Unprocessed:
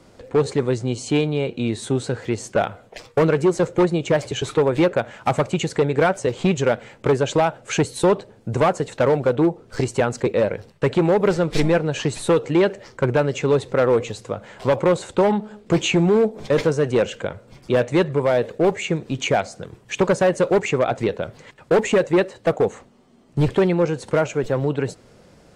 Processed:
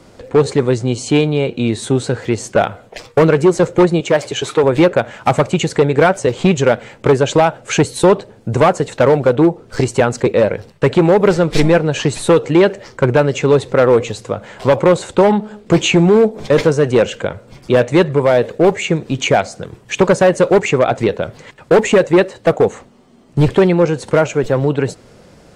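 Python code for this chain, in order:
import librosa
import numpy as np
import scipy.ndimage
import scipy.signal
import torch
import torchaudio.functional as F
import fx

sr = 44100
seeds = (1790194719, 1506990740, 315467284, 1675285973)

y = fx.highpass(x, sr, hz=280.0, slope=6, at=(4.0, 4.64))
y = y * librosa.db_to_amplitude(6.5)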